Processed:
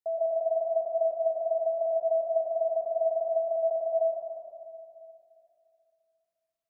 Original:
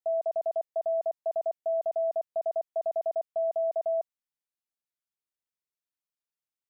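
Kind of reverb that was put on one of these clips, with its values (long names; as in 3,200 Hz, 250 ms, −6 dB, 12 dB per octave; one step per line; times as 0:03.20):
comb and all-pass reverb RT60 2.6 s, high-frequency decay 0.3×, pre-delay 75 ms, DRR −2.5 dB
level −2.5 dB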